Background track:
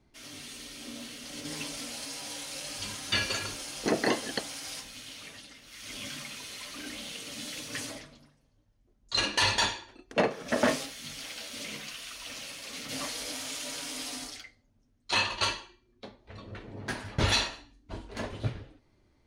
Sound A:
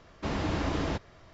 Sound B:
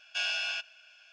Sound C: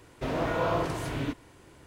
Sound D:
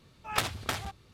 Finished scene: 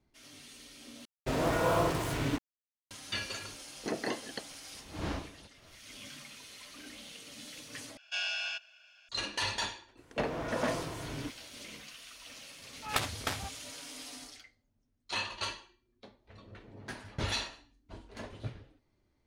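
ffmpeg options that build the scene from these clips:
-filter_complex "[3:a]asplit=2[s0][s1];[0:a]volume=0.398[s2];[s0]acrusher=bits=5:mix=0:aa=0.5[s3];[1:a]aeval=exprs='val(0)*pow(10,-23*(0.5-0.5*cos(2*PI*1.7*n/s))/20)':c=same[s4];[s1]asoftclip=type=tanh:threshold=0.075[s5];[s2]asplit=3[s6][s7][s8];[s6]atrim=end=1.054[s9];[s3]atrim=end=1.86,asetpts=PTS-STARTPTS,volume=0.944[s10];[s7]atrim=start=2.906:end=7.974[s11];[2:a]atrim=end=1.12,asetpts=PTS-STARTPTS,volume=0.708[s12];[s8]atrim=start=9.086[s13];[s4]atrim=end=1.33,asetpts=PTS-STARTPTS,volume=0.631,afade=t=in:d=0.004:c=hsin,afade=t=out:st=1.326:d=0.004:c=hsin,adelay=4500[s14];[s5]atrim=end=1.86,asetpts=PTS-STARTPTS,volume=0.447,afade=t=in:d=0.004:c=hsin,afade=t=out:st=1.856:d=0.004:c=hsin,adelay=9970[s15];[4:a]atrim=end=1.13,asetpts=PTS-STARTPTS,volume=0.75,afade=t=in:d=0.004:c=hsin,afade=t=out:st=1.126:d=0.004:c=hsin,adelay=12580[s16];[s9][s10]acrossfade=d=0.004:c1=hsin:c2=hsin[s17];[s17][s11]acrossfade=d=0.004:c1=hsin:c2=hsin[s18];[s18][s12]acrossfade=d=0.004:c1=hsin:c2=hsin[s19];[s19][s13]acrossfade=d=0.004:c1=hsin:c2=hsin[s20];[s20][s14][s15][s16]amix=inputs=4:normalize=0"

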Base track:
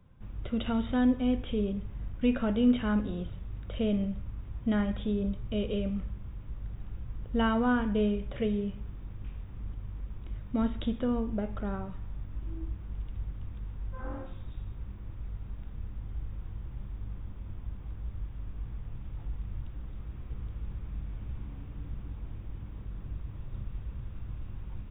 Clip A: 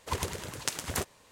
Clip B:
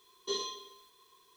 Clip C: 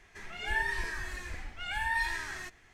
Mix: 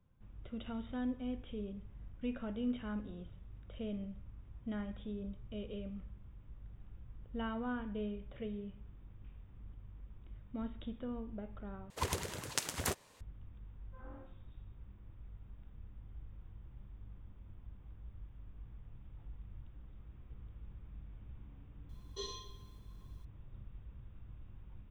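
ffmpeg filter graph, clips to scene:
-filter_complex "[0:a]volume=0.237,asplit=2[s0][s1];[s0]atrim=end=11.904[s2];[1:a]atrim=end=1.31,asetpts=PTS-STARTPTS,volume=0.668[s3];[s1]atrim=start=13.206[s4];[2:a]atrim=end=1.36,asetpts=PTS-STARTPTS,volume=0.355,afade=t=in:d=0.004:c=hsin,afade=t=out:st=1.356:d=0.004:c=hsin,adelay=21890[s5];[s2][s3]acrossfade=d=0.004:c1=hsin:c2=hsin[s6];[s6][s4]acrossfade=d=0.004:c1=hsin:c2=hsin[s7];[s7][s5]amix=inputs=2:normalize=0"

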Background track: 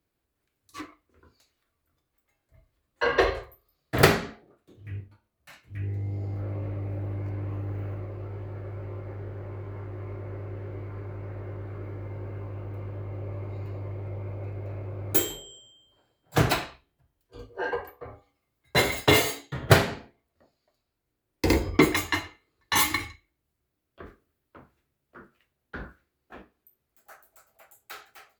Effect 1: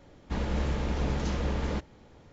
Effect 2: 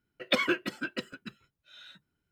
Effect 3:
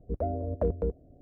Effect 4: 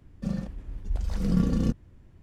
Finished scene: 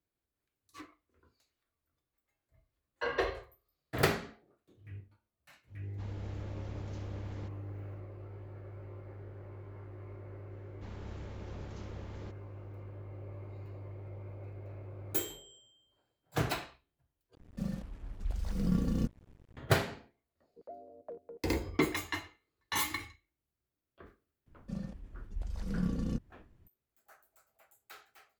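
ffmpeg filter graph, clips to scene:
-filter_complex "[1:a]asplit=2[s0][s1];[4:a]asplit=2[s2][s3];[0:a]volume=0.316[s4];[s2]acrusher=bits=7:mix=0:aa=0.5[s5];[3:a]highpass=460[s6];[s4]asplit=2[s7][s8];[s7]atrim=end=17.354[s9];[s5]atrim=end=2.22,asetpts=PTS-STARTPTS,volume=0.473[s10];[s8]atrim=start=19.566[s11];[s0]atrim=end=2.32,asetpts=PTS-STARTPTS,volume=0.141,afade=t=in:d=0.004:c=hsin,afade=t=out:st=2.316:d=0.004:c=hsin,adelay=5680[s12];[s1]atrim=end=2.32,asetpts=PTS-STARTPTS,volume=0.141,afade=t=in:d=0.004:c=hsin,afade=t=out:st=2.316:d=0.004:c=hsin,adelay=10510[s13];[s6]atrim=end=1.21,asetpts=PTS-STARTPTS,volume=0.2,afade=t=in:d=0.004:c=hsin,afade=t=out:st=1.206:d=0.004:c=hsin,adelay=20470[s14];[s3]atrim=end=2.22,asetpts=PTS-STARTPTS,volume=0.335,afade=t=in:d=0.004:c=hsin,afade=t=out:st=2.216:d=0.004:c=hsin,adelay=24460[s15];[s9][s10]acrossfade=d=0.004:c1=hsin:c2=hsin[s16];[s16][s11]acrossfade=d=0.004:c1=hsin:c2=hsin[s17];[s17][s12][s13][s14][s15]amix=inputs=5:normalize=0"

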